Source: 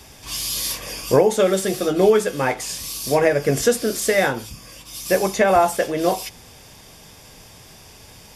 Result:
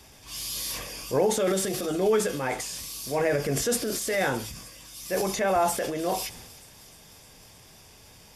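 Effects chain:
transient designer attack −5 dB, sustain +7 dB
delay with a high-pass on its return 308 ms, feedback 74%, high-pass 3,500 Hz, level −17.5 dB
level −7.5 dB

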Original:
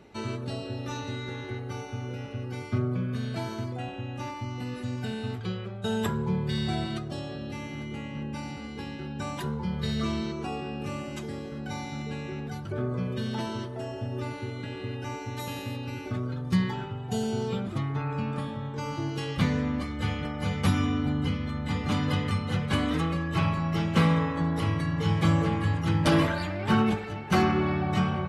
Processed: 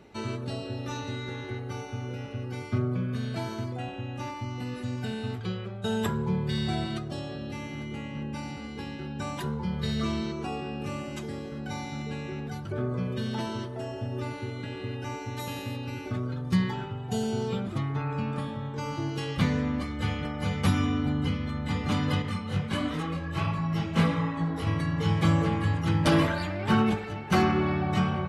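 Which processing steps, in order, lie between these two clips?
0:22.22–0:24.67: multi-voice chorus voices 2, 1.4 Hz, delay 20 ms, depth 3 ms

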